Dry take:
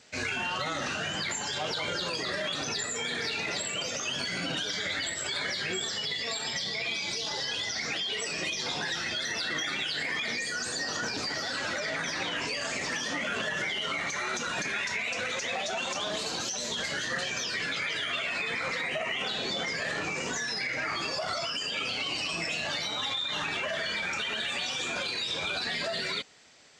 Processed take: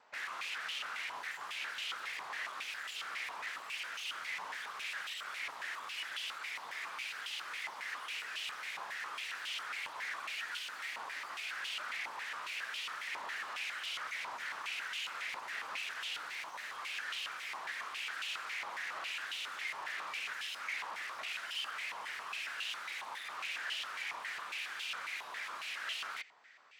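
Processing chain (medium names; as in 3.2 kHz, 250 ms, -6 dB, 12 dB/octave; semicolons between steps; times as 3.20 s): in parallel at -2.5 dB: peak limiter -28 dBFS, peak gain reduction 7.5 dB; on the sum: integer overflow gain 26.5 dB; 15.52–16.34 s: frequency shift -130 Hz; step-sequenced band-pass 7.3 Hz 990–2900 Hz; trim +1.5 dB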